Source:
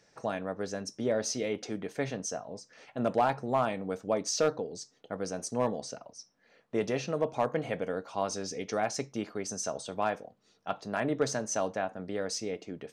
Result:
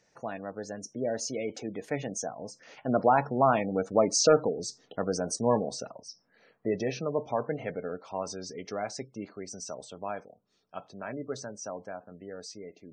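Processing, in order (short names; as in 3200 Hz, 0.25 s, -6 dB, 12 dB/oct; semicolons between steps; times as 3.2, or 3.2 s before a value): Doppler pass-by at 4.34, 14 m/s, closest 20 m; spectral gate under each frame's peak -25 dB strong; gain +6.5 dB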